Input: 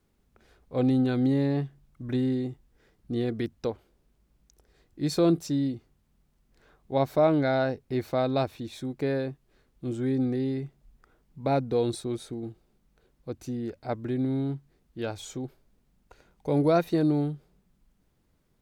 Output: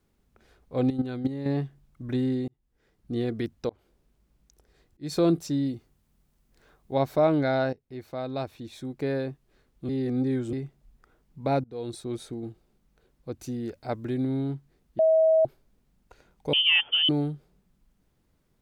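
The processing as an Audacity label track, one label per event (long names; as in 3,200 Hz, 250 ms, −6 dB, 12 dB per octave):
0.900000	1.460000	output level in coarse steps of 11 dB
2.480000	3.160000	fade in
3.690000	5.160000	volume swells 204 ms
5.670000	6.970000	high-shelf EQ 6,700 Hz +6 dB
7.730000	9.230000	fade in, from −15.5 dB
9.890000	10.530000	reverse
11.640000	12.200000	fade in, from −24 dB
13.390000	14.250000	high-shelf EQ 4,100 Hz +5 dB
14.990000	15.450000	beep over 641 Hz −16.5 dBFS
16.530000	17.090000	voice inversion scrambler carrier 3,300 Hz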